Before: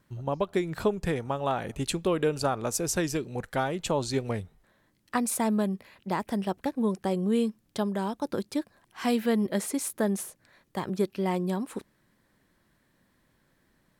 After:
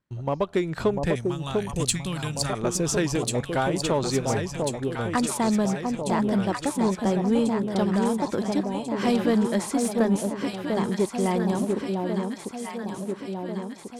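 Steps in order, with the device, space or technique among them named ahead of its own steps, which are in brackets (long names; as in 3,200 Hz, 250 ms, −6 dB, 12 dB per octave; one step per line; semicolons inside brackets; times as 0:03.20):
low-pass filter 8,300 Hz 12 dB per octave
noise gate −54 dBFS, range −19 dB
0:01.15–0:02.53: drawn EQ curve 180 Hz 0 dB, 440 Hz −20 dB, 8,000 Hz +11 dB
delay that swaps between a low-pass and a high-pass 696 ms, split 910 Hz, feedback 76%, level −3.5 dB
parallel distortion (in parallel at −5 dB: hard clipping −24.5 dBFS, distortion −11 dB)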